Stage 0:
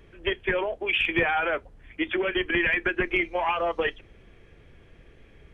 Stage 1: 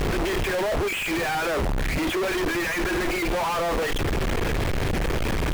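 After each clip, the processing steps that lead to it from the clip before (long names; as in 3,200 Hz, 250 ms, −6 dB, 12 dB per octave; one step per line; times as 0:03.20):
sign of each sample alone
high-shelf EQ 2,500 Hz −9.5 dB
level +5.5 dB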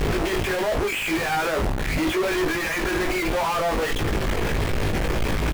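double-tracking delay 19 ms −5 dB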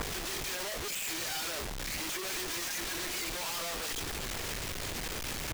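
wrap-around overflow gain 23 dB
level −8.5 dB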